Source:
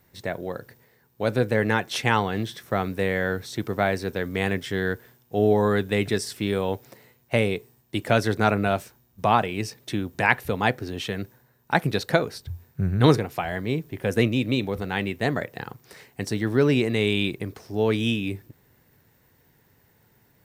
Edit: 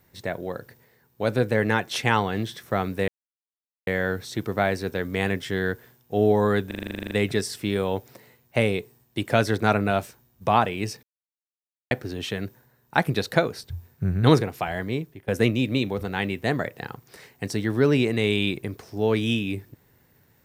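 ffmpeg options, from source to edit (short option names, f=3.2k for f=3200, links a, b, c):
-filter_complex "[0:a]asplit=16[a][b][c][d][e][f][g][h][i][j][k][l][m][n][o][p];[a]atrim=end=3.08,asetpts=PTS-STARTPTS,afade=t=out:st=3.076:d=0.004:c=hsin,apad=pad_dur=0.79[q];[b]atrim=start=3.08:end=5.922,asetpts=PTS-STARTPTS,afade=t=in:d=0.004:c=hsin[r];[c]atrim=start=5.878:end=5.922[s];[d]atrim=start=5.878:end=5.922[t];[e]atrim=start=5.878:end=5.922[u];[f]atrim=start=5.878:end=5.922[v];[g]atrim=start=5.878:end=5.922[w];[h]atrim=start=5.878:end=5.922[x];[i]atrim=start=5.878:end=5.922[y];[j]atrim=start=5.878:end=5.922[z];[k]atrim=start=5.878:end=5.922[aa];[l]atrim=start=5.878:end=5.922[ab];[m]atrim=start=5.878:end=9.8,asetpts=PTS-STARTPTS,afade=t=out:st=3.918:d=0.004:c=hsin[ac];[n]atrim=start=9.8:end=10.68,asetpts=PTS-STARTPTS,volume=0[ad];[o]atrim=start=10.68:end=14.05,asetpts=PTS-STARTPTS,afade=t=in:d=0.004:c=hsin,afade=t=out:st=2.96:d=0.41:silence=0.11885[ae];[p]atrim=start=14.05,asetpts=PTS-STARTPTS,afade=t=in:d=0.004:c=hsin:silence=0.11885[af];[q][r]concat=n=2:v=0:a=1[ag];[ag][s]acrossfade=d=0.004:c1=hsin:c2=hsin[ah];[ah][t]acrossfade=d=0.004:c1=hsin:c2=hsin[ai];[ai][u]acrossfade=d=0.004:c1=hsin:c2=hsin[aj];[aj][v]acrossfade=d=0.004:c1=hsin:c2=hsin[ak];[ak][w]acrossfade=d=0.004:c1=hsin:c2=hsin[al];[al][x]acrossfade=d=0.004:c1=hsin:c2=hsin[am];[am][y]acrossfade=d=0.004:c1=hsin:c2=hsin[an];[an][z]acrossfade=d=0.004:c1=hsin:c2=hsin[ao];[ao][aa]acrossfade=d=0.004:c1=hsin:c2=hsin[ap];[ap][ab]acrossfade=d=0.004:c1=hsin:c2=hsin[aq];[ac][ad][ae][af]concat=n=4:v=0:a=1[ar];[aq][ar]acrossfade=d=0.004:c1=hsin:c2=hsin"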